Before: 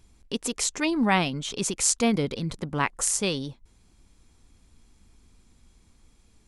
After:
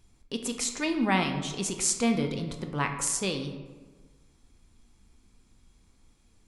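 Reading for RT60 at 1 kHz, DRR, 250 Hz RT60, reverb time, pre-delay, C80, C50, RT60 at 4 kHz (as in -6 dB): 1.3 s, 5.0 dB, 1.5 s, 1.4 s, 8 ms, 9.5 dB, 7.5 dB, 0.75 s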